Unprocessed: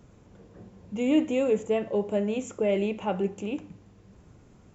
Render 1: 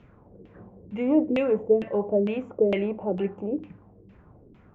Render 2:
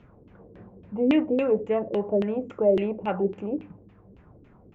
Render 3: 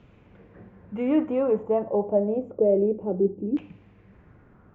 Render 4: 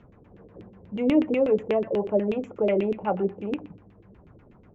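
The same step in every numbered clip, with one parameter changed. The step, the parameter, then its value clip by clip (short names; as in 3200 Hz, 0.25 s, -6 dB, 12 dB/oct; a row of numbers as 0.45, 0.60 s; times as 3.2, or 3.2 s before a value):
LFO low-pass, rate: 2.2, 3.6, 0.28, 8.2 Hz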